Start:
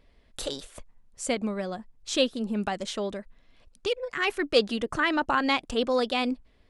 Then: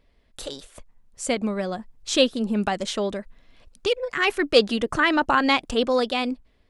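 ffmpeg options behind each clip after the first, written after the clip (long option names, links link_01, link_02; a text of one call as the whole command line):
ffmpeg -i in.wav -af "dynaudnorm=framelen=330:gausssize=7:maxgain=10dB,volume=-2dB" out.wav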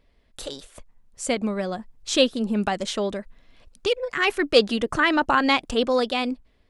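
ffmpeg -i in.wav -af anull out.wav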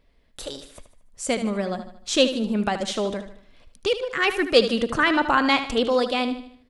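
ffmpeg -i in.wav -af "aecho=1:1:76|152|228|304|380:0.282|0.124|0.0546|0.024|0.0106" out.wav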